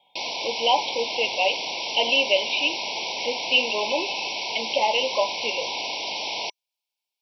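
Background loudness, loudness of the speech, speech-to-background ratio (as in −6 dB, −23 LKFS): −28.0 LKFS, −24.5 LKFS, 3.5 dB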